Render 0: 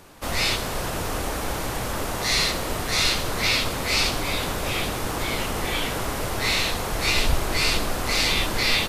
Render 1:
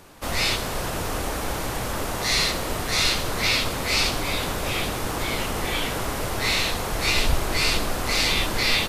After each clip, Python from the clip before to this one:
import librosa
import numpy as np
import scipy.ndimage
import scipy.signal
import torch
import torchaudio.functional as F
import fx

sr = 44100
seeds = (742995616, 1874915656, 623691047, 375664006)

y = x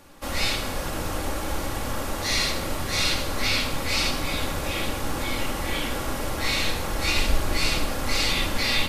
y = fx.room_shoebox(x, sr, seeds[0], volume_m3=3500.0, walls='furnished', distance_m=2.3)
y = y * librosa.db_to_amplitude(-4.0)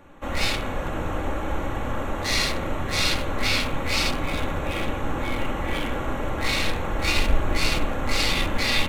y = fx.wiener(x, sr, points=9)
y = y * librosa.db_to_amplitude(2.0)